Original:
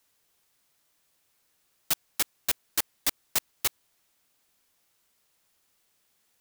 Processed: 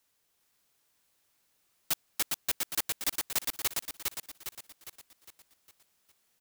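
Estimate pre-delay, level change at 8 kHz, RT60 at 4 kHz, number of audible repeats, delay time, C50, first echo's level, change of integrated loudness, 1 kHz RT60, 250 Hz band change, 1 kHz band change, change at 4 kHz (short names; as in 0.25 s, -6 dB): none, -2.0 dB, none, 5, 0.407 s, none, -3.0 dB, -3.5 dB, none, -2.0 dB, -2.0 dB, -2.0 dB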